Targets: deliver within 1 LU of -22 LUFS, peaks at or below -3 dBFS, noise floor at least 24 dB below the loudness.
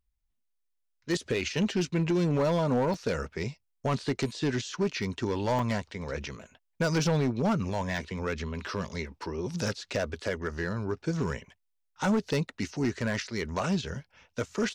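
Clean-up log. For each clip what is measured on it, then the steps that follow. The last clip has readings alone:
clipped 1.3%; flat tops at -21.0 dBFS; dropouts 2; longest dropout 2.9 ms; loudness -30.5 LUFS; peak -21.0 dBFS; loudness target -22.0 LUFS
-> clip repair -21 dBFS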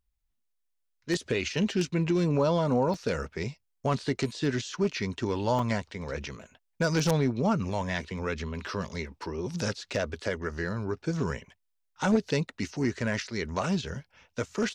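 clipped 0.0%; dropouts 2; longest dropout 2.9 ms
-> interpolate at 2.94/5.59, 2.9 ms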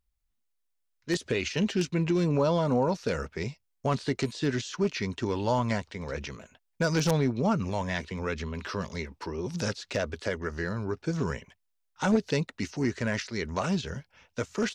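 dropouts 0; loudness -30.0 LUFS; peak -12.0 dBFS; loudness target -22.0 LUFS
-> gain +8 dB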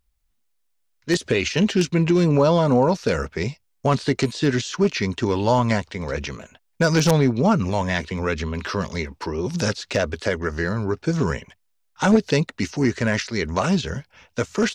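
loudness -22.0 LUFS; peak -4.0 dBFS; noise floor -69 dBFS

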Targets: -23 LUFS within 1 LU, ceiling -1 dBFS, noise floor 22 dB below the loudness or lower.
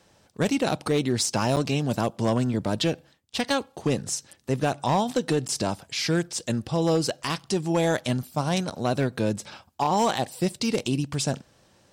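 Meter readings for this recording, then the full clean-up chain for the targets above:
clipped 0.8%; flat tops at -16.0 dBFS; dropouts 3; longest dropout 8.1 ms; loudness -26.0 LUFS; peak -16.0 dBFS; loudness target -23.0 LUFS
-> clip repair -16 dBFS; interpolate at 1.56/5.48/8.7, 8.1 ms; gain +3 dB

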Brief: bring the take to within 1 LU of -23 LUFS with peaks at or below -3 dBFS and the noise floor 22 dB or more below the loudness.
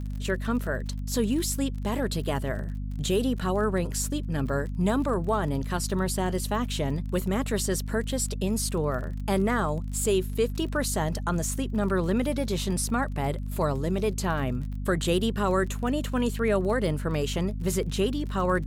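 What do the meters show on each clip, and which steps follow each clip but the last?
ticks 29/s; hum 50 Hz; harmonics up to 250 Hz; hum level -30 dBFS; loudness -27.5 LUFS; peak -13.0 dBFS; loudness target -23.0 LUFS
-> de-click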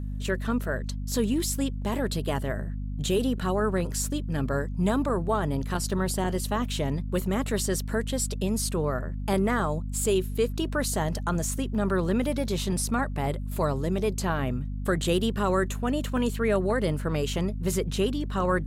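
ticks 0.32/s; hum 50 Hz; harmonics up to 250 Hz; hum level -30 dBFS
-> notches 50/100/150/200/250 Hz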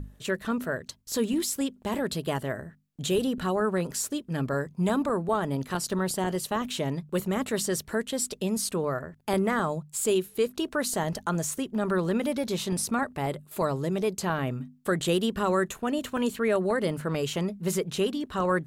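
hum none; loudness -29.0 LUFS; peak -13.5 dBFS; loudness target -23.0 LUFS
-> gain +6 dB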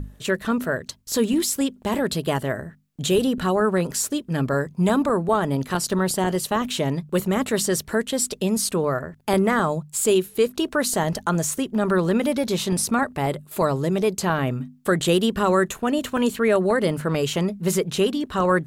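loudness -23.0 LUFS; peak -7.5 dBFS; noise floor -50 dBFS

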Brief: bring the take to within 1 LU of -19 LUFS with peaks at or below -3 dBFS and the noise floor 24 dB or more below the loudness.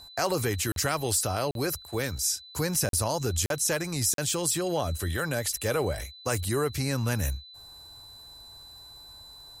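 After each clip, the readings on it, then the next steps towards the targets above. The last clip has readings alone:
dropouts 5; longest dropout 42 ms; steady tone 4000 Hz; tone level -46 dBFS; loudness -28.0 LUFS; peak -12.5 dBFS; loudness target -19.0 LUFS
-> interpolate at 0.72/1.51/2.89/3.46/4.14, 42 ms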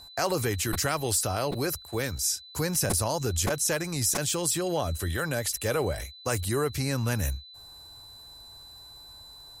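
dropouts 0; steady tone 4000 Hz; tone level -46 dBFS
-> notch 4000 Hz, Q 30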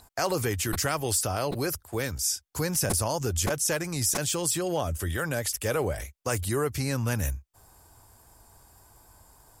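steady tone none; loudness -28.0 LUFS; peak -13.0 dBFS; loudness target -19.0 LUFS
-> gain +9 dB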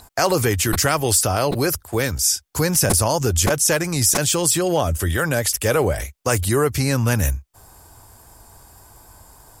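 loudness -19.0 LUFS; peak -4.0 dBFS; noise floor -55 dBFS

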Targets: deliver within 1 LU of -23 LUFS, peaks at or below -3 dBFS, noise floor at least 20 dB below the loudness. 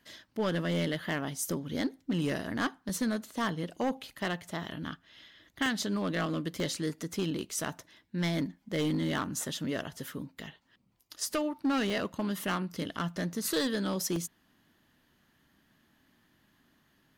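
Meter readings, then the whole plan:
clipped 1.0%; flat tops at -24.0 dBFS; dropouts 5; longest dropout 1.8 ms; loudness -33.0 LUFS; peak -24.0 dBFS; loudness target -23.0 LUFS
-> clip repair -24 dBFS; interpolate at 2.89/5.66/6.6/11.9/14.16, 1.8 ms; gain +10 dB

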